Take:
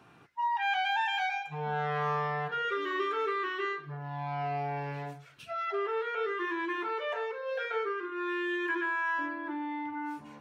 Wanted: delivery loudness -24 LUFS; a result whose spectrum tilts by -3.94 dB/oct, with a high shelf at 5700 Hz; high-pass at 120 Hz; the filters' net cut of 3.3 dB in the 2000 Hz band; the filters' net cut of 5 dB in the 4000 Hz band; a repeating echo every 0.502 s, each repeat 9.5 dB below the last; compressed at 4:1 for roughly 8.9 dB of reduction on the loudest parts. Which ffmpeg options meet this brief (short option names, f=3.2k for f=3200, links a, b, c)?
-af "highpass=120,equalizer=f=2k:t=o:g=-3.5,equalizer=f=4k:t=o:g=-8.5,highshelf=f=5.7k:g=9,acompressor=threshold=-39dB:ratio=4,aecho=1:1:502|1004|1506|2008:0.335|0.111|0.0365|0.012,volume=16.5dB"